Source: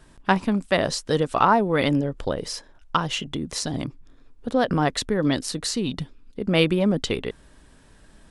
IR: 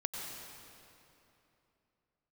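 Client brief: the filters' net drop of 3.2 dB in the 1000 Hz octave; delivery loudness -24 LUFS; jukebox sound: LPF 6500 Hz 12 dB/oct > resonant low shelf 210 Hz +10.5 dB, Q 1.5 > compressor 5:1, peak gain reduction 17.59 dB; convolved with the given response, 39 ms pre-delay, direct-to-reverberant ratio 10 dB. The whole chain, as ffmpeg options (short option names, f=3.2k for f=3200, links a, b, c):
-filter_complex "[0:a]equalizer=f=1k:t=o:g=-3.5,asplit=2[a][b];[1:a]atrim=start_sample=2205,adelay=39[c];[b][c]afir=irnorm=-1:irlink=0,volume=-12dB[d];[a][d]amix=inputs=2:normalize=0,lowpass=6.5k,lowshelf=f=210:t=q:w=1.5:g=10.5,acompressor=threshold=-31dB:ratio=5,volume=10dB"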